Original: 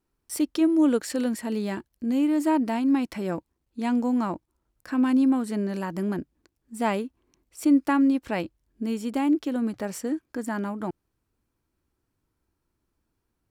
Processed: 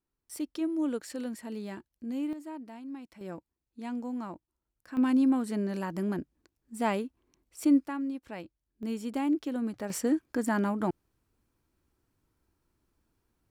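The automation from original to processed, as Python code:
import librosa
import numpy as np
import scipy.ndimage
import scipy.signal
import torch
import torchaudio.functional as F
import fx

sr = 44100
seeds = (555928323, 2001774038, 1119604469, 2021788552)

y = fx.gain(x, sr, db=fx.steps((0.0, -10.0), (2.33, -19.0), (3.21, -11.5), (4.97, -3.5), (7.87, -13.0), (8.83, -5.5), (9.9, 1.5)))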